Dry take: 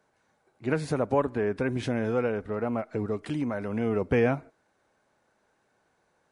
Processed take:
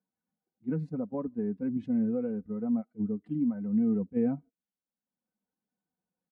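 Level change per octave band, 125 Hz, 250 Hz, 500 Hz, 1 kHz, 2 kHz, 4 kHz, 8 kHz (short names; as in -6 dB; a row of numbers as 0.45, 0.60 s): -6.0 dB, +2.0 dB, -9.5 dB, -16.0 dB, under -20 dB, under -25 dB, n/a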